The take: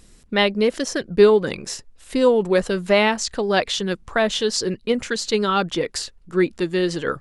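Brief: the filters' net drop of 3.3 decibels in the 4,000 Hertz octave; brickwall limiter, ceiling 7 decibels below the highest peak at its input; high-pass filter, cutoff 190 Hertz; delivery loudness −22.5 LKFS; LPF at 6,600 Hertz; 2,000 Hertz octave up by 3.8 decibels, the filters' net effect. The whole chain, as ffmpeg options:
ffmpeg -i in.wav -af "highpass=190,lowpass=6600,equalizer=frequency=2000:width_type=o:gain=6,equalizer=frequency=4000:width_type=o:gain=-6.5,volume=-0.5dB,alimiter=limit=-9.5dB:level=0:latency=1" out.wav

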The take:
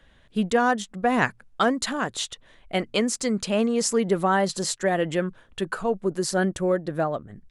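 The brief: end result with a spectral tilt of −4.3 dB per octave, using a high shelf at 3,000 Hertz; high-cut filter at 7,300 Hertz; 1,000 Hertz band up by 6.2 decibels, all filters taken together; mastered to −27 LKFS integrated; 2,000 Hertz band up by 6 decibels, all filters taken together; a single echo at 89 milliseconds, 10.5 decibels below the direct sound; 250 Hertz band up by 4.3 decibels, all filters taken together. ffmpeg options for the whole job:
ffmpeg -i in.wav -af "lowpass=7300,equalizer=frequency=250:width_type=o:gain=5,equalizer=frequency=1000:width_type=o:gain=7.5,equalizer=frequency=2000:width_type=o:gain=7,highshelf=frequency=3000:gain=-7,aecho=1:1:89:0.299,volume=-6.5dB" out.wav

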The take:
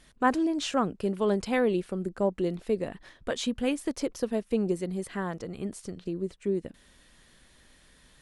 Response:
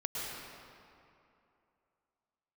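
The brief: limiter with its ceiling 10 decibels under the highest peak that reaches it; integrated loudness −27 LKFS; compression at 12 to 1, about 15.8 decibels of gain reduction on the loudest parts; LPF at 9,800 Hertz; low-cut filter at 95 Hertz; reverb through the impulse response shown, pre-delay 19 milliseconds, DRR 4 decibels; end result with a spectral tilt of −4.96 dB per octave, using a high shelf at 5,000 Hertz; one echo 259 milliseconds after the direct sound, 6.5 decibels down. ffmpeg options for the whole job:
-filter_complex "[0:a]highpass=95,lowpass=9800,highshelf=frequency=5000:gain=-9,acompressor=threshold=-34dB:ratio=12,alimiter=level_in=9.5dB:limit=-24dB:level=0:latency=1,volume=-9.5dB,aecho=1:1:259:0.473,asplit=2[link_01][link_02];[1:a]atrim=start_sample=2205,adelay=19[link_03];[link_02][link_03]afir=irnorm=-1:irlink=0,volume=-8dB[link_04];[link_01][link_04]amix=inputs=2:normalize=0,volume=14dB"

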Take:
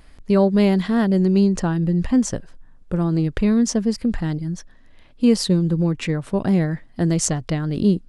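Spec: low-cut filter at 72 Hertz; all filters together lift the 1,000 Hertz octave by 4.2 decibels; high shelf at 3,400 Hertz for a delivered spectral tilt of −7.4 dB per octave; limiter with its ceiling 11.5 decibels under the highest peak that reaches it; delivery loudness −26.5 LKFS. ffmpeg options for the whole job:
ffmpeg -i in.wav -af "highpass=72,equalizer=frequency=1000:width_type=o:gain=6,highshelf=frequency=3400:gain=-5.5,volume=-1dB,alimiter=limit=-18.5dB:level=0:latency=1" out.wav

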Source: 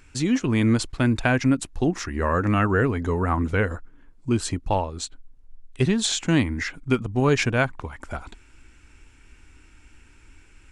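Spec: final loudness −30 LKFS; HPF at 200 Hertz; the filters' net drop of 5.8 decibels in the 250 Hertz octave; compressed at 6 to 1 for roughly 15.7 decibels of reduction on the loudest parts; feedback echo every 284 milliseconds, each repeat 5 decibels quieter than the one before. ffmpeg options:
ffmpeg -i in.wav -af "highpass=200,equalizer=frequency=250:width_type=o:gain=-5,acompressor=threshold=-35dB:ratio=6,aecho=1:1:284|568|852|1136|1420|1704|1988:0.562|0.315|0.176|0.0988|0.0553|0.031|0.0173,volume=8dB" out.wav

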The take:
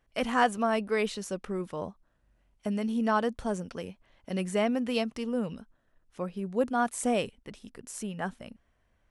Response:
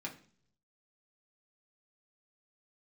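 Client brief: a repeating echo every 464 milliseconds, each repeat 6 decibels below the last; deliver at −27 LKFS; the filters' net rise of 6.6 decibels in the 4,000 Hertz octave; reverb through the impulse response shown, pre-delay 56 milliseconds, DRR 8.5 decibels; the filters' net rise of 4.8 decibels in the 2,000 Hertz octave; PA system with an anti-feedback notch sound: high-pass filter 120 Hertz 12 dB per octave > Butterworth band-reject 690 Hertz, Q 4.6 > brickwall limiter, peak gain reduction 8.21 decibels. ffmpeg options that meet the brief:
-filter_complex "[0:a]equalizer=frequency=2000:width_type=o:gain=4.5,equalizer=frequency=4000:width_type=o:gain=7.5,aecho=1:1:464|928|1392|1856|2320|2784:0.501|0.251|0.125|0.0626|0.0313|0.0157,asplit=2[link_01][link_02];[1:a]atrim=start_sample=2205,adelay=56[link_03];[link_02][link_03]afir=irnorm=-1:irlink=0,volume=-8.5dB[link_04];[link_01][link_04]amix=inputs=2:normalize=0,highpass=120,asuperstop=centerf=690:order=8:qfactor=4.6,volume=4dB,alimiter=limit=-15.5dB:level=0:latency=1"

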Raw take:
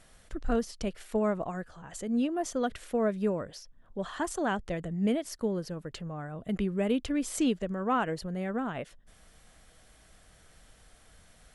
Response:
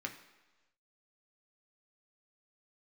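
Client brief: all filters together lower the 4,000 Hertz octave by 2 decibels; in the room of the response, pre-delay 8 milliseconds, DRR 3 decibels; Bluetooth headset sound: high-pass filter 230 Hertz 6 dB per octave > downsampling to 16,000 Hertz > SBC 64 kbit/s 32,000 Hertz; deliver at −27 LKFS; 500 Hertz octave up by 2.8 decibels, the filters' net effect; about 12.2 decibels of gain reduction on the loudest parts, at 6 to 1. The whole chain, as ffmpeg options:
-filter_complex "[0:a]equalizer=frequency=500:width_type=o:gain=4.5,equalizer=frequency=4000:width_type=o:gain=-3,acompressor=threshold=-35dB:ratio=6,asplit=2[link_01][link_02];[1:a]atrim=start_sample=2205,adelay=8[link_03];[link_02][link_03]afir=irnorm=-1:irlink=0,volume=-3.5dB[link_04];[link_01][link_04]amix=inputs=2:normalize=0,highpass=frequency=230:poles=1,aresample=16000,aresample=44100,volume=13.5dB" -ar 32000 -c:a sbc -b:a 64k

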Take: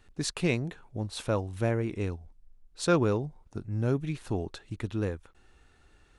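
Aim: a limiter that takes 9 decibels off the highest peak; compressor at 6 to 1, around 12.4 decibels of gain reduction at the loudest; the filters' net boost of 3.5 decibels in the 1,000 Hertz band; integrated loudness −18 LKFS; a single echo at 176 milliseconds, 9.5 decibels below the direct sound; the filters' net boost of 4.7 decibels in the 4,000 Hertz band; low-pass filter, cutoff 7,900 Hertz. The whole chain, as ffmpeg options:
ffmpeg -i in.wav -af "lowpass=7900,equalizer=frequency=1000:width_type=o:gain=4.5,equalizer=frequency=4000:width_type=o:gain=5.5,acompressor=threshold=-30dB:ratio=6,alimiter=level_in=3.5dB:limit=-24dB:level=0:latency=1,volume=-3.5dB,aecho=1:1:176:0.335,volume=20.5dB" out.wav

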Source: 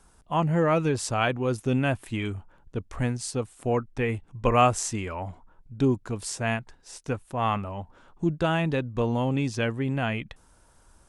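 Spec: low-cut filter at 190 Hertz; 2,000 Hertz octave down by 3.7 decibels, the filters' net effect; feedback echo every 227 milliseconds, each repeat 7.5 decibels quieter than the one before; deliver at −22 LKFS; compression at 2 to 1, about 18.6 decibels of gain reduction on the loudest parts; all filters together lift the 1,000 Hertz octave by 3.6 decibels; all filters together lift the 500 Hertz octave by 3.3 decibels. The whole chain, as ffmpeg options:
ffmpeg -i in.wav -af "highpass=190,equalizer=frequency=500:width_type=o:gain=3,equalizer=frequency=1000:width_type=o:gain=5.5,equalizer=frequency=2000:width_type=o:gain=-7.5,acompressor=threshold=-47dB:ratio=2,aecho=1:1:227|454|681|908|1135:0.422|0.177|0.0744|0.0312|0.0131,volume=18dB" out.wav

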